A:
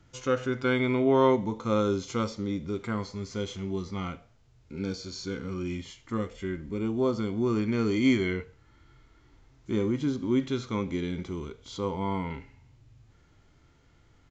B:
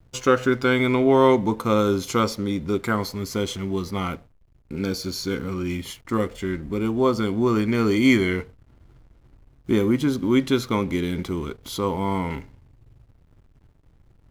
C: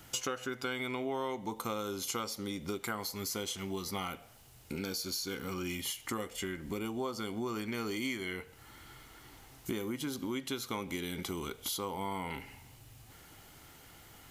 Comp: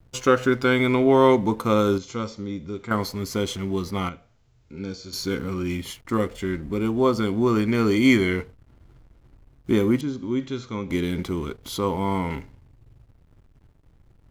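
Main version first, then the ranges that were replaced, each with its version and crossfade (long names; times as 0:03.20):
B
0:01.98–0:02.91: punch in from A
0:04.09–0:05.13: punch in from A
0:10.01–0:10.90: punch in from A
not used: C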